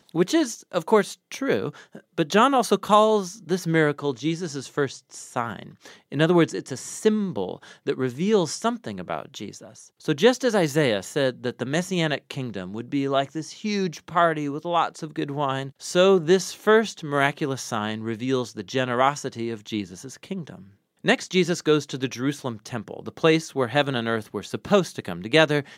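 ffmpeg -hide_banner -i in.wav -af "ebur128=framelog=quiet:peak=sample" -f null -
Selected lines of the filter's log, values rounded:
Integrated loudness:
  I:         -24.0 LUFS
  Threshold: -34.3 LUFS
Loudness range:
  LRA:         4.3 LU
  Threshold: -44.5 LUFS
  LRA low:   -26.6 LUFS
  LRA high:  -22.3 LUFS
Sample peak:
  Peak:       -1.5 dBFS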